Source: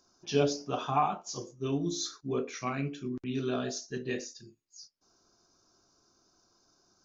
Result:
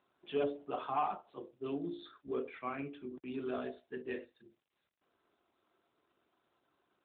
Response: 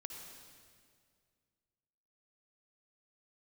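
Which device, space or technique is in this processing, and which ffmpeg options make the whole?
telephone: -af "highpass=280,lowpass=3.1k,asoftclip=type=tanh:threshold=-20.5dB,volume=-3.5dB" -ar 8000 -c:a libopencore_amrnb -b:a 12200

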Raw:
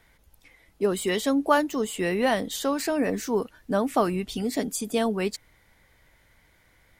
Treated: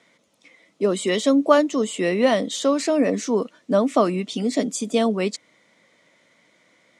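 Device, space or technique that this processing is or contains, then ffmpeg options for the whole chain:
television speaker: -af "highpass=f=190:w=0.5412,highpass=f=190:w=1.3066,equalizer=f=400:t=q:w=4:g=-4,equalizer=f=580:t=q:w=4:g=3,equalizer=f=830:t=q:w=4:g=-9,equalizer=f=1.6k:t=q:w=4:g=-10,equalizer=f=2.7k:t=q:w=4:g=-3,equalizer=f=4.7k:t=q:w=4:g=-4,lowpass=f=7.7k:w=0.5412,lowpass=f=7.7k:w=1.3066,volume=6.5dB"

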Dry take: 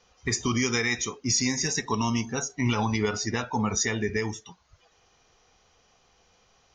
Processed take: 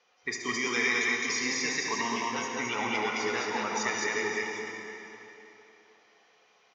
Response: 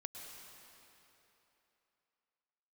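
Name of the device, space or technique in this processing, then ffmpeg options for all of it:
station announcement: -filter_complex "[0:a]highpass=350,lowpass=4.9k,equalizer=f=2.1k:t=o:w=0.56:g=5,aecho=1:1:72.89|212.8:0.355|0.794[a];[1:a]atrim=start_sample=2205[b];[a][b]afir=irnorm=-1:irlink=0"

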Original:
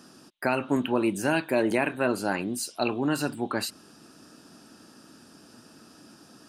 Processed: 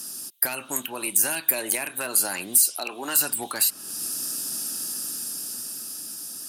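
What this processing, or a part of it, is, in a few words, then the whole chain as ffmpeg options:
FM broadcast chain: -filter_complex "[0:a]asettb=1/sr,asplit=3[a][b][c];[a]atrim=end=2.714[d];[b]atrim=start=2.71:end=3.16,asetpts=PTS-STARTPTS,afade=t=in:d=0.004:c=qsin,afade=t=out:st=0.446:d=0.004:c=qsin,highpass=280[e];[c]atrim=start=3.156[f];[d][e]acrossfade=d=0.004:c1=hsin:c2=qsin[g];[g][f]acrossfade=d=0.004:c1=qsin:c2=hsin,highpass=63,dynaudnorm=f=220:g=13:m=6dB,acrossover=split=540|2900[h][i][j];[h]acompressor=threshold=-36dB:ratio=4[k];[i]acompressor=threshold=-26dB:ratio=4[l];[j]acompressor=threshold=-42dB:ratio=4[m];[k][l][m]amix=inputs=3:normalize=0,aemphasis=mode=production:type=75fm,alimiter=limit=-19dB:level=0:latency=1:release=420,asoftclip=type=hard:threshold=-23dB,lowpass=f=15k:w=0.5412,lowpass=f=15k:w=1.3066,aemphasis=mode=production:type=75fm"

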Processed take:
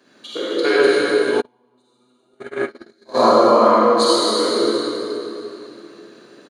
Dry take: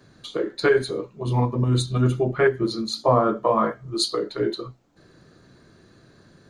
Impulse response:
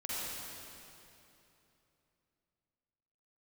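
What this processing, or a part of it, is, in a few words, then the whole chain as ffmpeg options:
stadium PA: -filter_complex "[0:a]highpass=f=230:w=0.5412,highpass=f=230:w=1.3066,equalizer=f=2.8k:t=o:w=0.42:g=6,aecho=1:1:148.7|279.9:0.355|0.282[a];[1:a]atrim=start_sample=2205[b];[a][b]afir=irnorm=-1:irlink=0,asplit=3[c][d][e];[c]afade=t=out:st=1.4:d=0.02[f];[d]agate=range=-41dB:threshold=-15dB:ratio=16:detection=peak,afade=t=in:st=1.4:d=0.02,afade=t=out:st=3.22:d=0.02[g];[e]afade=t=in:st=3.22:d=0.02[h];[f][g][h]amix=inputs=3:normalize=0,volume=4dB"

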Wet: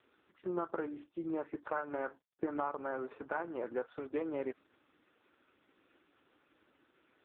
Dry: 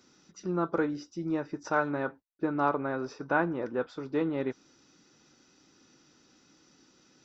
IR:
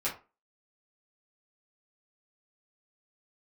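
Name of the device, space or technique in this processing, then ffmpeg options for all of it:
voicemail: -af "highpass=400,lowpass=3k,acompressor=threshold=-33dB:ratio=12,volume=2dB" -ar 8000 -c:a libopencore_amrnb -b:a 4750

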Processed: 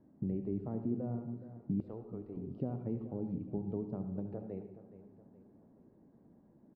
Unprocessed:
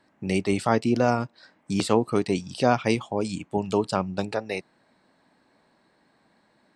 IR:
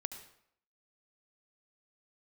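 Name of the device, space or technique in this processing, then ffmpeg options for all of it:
television next door: -filter_complex "[0:a]acompressor=threshold=-42dB:ratio=3,lowpass=310[a];[1:a]atrim=start_sample=2205[b];[a][b]afir=irnorm=-1:irlink=0,asettb=1/sr,asplit=3[c][d][e];[c]atrim=end=1.804[f];[d]atrim=start=1.8:end=2.37,asetpts=PTS-STARTPTS,afade=t=in:d=0.004:c=qsin,afade=t=out:st=0.566:d=0.004:c=qsin,equalizer=f=180:t=o:w=2.1:g=-13.5[g];[e]atrim=start=2.366[h];[f][g]acrossfade=d=0.004:c1=hsin:c2=qsin[i];[i][h]acrossfade=d=0.004:c1=qsin:c2=hsin,aecho=1:1:420|840|1260|1680:0.2|0.0878|0.0386|0.017,volume=8dB"

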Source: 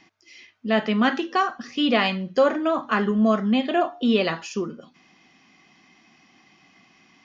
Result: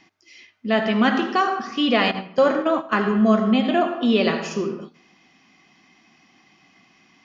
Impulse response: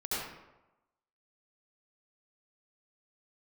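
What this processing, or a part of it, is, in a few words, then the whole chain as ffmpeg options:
keyed gated reverb: -filter_complex "[0:a]asplit=3[a][b][c];[1:a]atrim=start_sample=2205[d];[b][d]afir=irnorm=-1:irlink=0[e];[c]apad=whole_len=319439[f];[e][f]sidechaingate=range=-18dB:threshold=-44dB:ratio=16:detection=peak,volume=-10.5dB[g];[a][g]amix=inputs=2:normalize=0,asettb=1/sr,asplit=3[h][i][j];[h]atrim=end=2.114[k];[i]atrim=start=2.11:end=3,asetpts=PTS-STARTPTS,afade=t=in:d=0.004:c=qsin,afade=t=out:st=0.886:d=0.004:c=qsin,agate=range=-10dB:threshold=-22dB:ratio=16:detection=peak[l];[j]atrim=start=2.996[m];[k][l]acrossfade=d=0.004:c1=hsin:c2=qsin[n];[n][m]acrossfade=d=0.004:c1=qsin:c2=hsin"

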